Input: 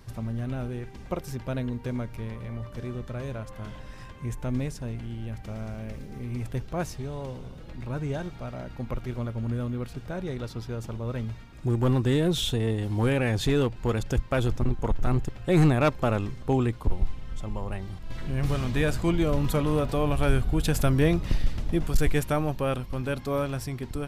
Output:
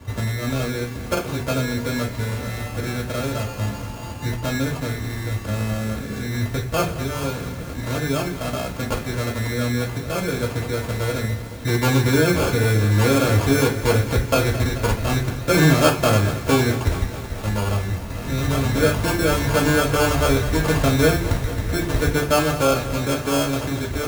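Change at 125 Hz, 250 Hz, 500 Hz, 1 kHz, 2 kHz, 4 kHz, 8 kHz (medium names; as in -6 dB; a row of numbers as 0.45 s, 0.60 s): +6.0 dB, +6.0 dB, +7.5 dB, +9.5 dB, +12.0 dB, +10.0 dB, +13.5 dB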